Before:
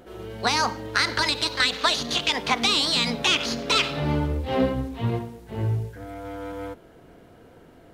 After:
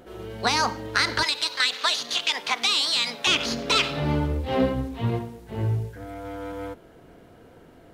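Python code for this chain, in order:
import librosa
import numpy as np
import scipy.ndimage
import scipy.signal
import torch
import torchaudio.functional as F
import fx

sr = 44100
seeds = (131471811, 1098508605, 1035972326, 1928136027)

y = fx.highpass(x, sr, hz=1100.0, slope=6, at=(1.23, 3.27))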